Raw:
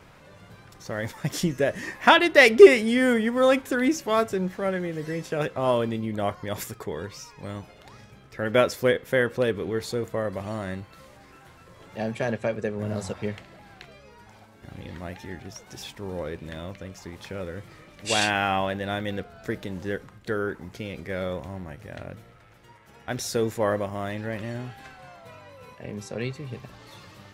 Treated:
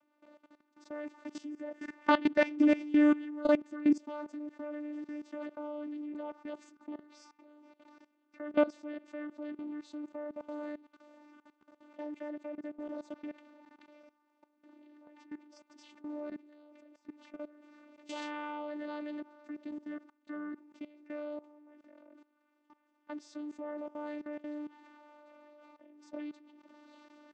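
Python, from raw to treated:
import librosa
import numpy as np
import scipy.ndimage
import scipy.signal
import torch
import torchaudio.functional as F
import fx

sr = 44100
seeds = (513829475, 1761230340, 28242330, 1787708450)

y = fx.vocoder(x, sr, bands=16, carrier='saw', carrier_hz=297.0)
y = fx.level_steps(y, sr, step_db=18)
y = y * 10.0 ** (-4.0 / 20.0)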